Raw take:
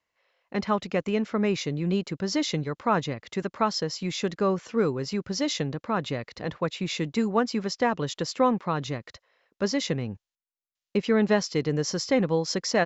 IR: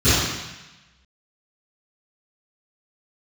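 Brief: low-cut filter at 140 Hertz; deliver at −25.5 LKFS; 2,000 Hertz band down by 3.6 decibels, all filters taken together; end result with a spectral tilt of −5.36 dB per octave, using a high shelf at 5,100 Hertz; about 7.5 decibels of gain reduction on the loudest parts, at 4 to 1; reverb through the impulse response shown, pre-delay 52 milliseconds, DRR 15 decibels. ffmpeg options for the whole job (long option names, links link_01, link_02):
-filter_complex "[0:a]highpass=140,equalizer=frequency=2000:width_type=o:gain=-3.5,highshelf=frequency=5100:gain=-7,acompressor=threshold=-27dB:ratio=4,asplit=2[link_01][link_02];[1:a]atrim=start_sample=2205,adelay=52[link_03];[link_02][link_03]afir=irnorm=-1:irlink=0,volume=-37.5dB[link_04];[link_01][link_04]amix=inputs=2:normalize=0,volume=7dB"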